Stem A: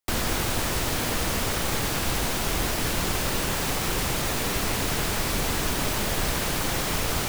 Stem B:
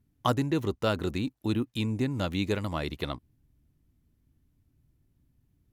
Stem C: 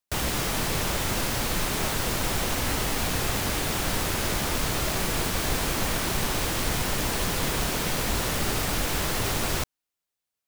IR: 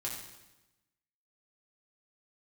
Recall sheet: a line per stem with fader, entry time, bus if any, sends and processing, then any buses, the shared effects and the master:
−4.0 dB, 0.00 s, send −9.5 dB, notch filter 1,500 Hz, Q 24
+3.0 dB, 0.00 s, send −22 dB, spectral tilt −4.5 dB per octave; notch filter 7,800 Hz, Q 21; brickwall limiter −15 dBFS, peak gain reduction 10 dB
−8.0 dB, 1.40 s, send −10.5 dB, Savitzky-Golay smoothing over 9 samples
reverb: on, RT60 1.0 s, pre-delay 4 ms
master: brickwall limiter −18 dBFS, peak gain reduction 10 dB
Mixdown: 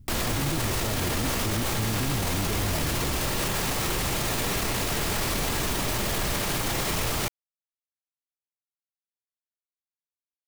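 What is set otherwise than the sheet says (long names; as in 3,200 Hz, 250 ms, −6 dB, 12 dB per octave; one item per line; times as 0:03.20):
stem A −4.0 dB → +7.0 dB
stem C: muted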